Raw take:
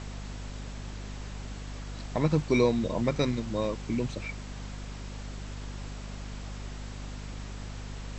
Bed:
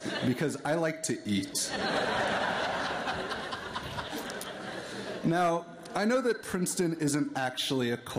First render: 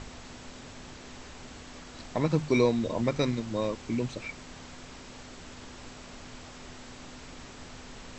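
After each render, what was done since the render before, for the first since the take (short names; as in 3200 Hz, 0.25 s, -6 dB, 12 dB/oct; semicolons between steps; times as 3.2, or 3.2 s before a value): notches 50/100/150/200 Hz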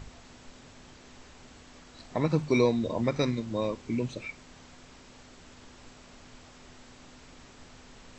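noise print and reduce 6 dB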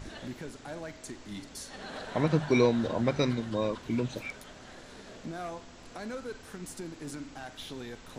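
add bed -12 dB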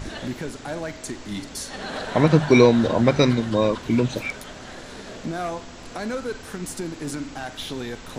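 gain +10 dB; limiter -2 dBFS, peak gain reduction 1 dB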